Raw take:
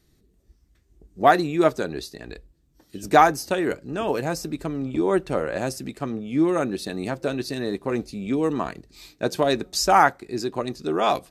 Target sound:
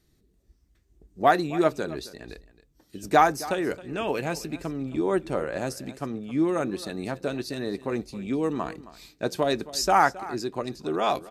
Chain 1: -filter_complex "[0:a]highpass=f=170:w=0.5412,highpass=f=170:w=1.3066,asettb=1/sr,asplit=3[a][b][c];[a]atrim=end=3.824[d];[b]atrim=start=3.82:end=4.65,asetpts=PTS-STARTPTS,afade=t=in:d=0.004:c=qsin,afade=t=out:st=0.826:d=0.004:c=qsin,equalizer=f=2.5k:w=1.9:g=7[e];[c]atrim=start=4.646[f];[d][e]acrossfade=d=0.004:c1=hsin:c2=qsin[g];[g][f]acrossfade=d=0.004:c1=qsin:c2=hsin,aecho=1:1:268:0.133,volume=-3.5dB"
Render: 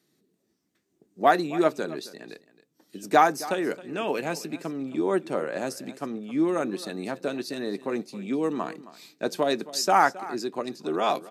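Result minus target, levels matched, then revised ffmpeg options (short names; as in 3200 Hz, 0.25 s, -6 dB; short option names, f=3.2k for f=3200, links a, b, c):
125 Hz band -5.5 dB
-filter_complex "[0:a]asettb=1/sr,asplit=3[a][b][c];[a]atrim=end=3.824[d];[b]atrim=start=3.82:end=4.65,asetpts=PTS-STARTPTS,afade=t=in:d=0.004:c=qsin,afade=t=out:st=0.826:d=0.004:c=qsin,equalizer=f=2.5k:w=1.9:g=7[e];[c]atrim=start=4.646[f];[d][e]acrossfade=d=0.004:c1=hsin:c2=qsin[g];[g][f]acrossfade=d=0.004:c1=qsin:c2=hsin,aecho=1:1:268:0.133,volume=-3.5dB"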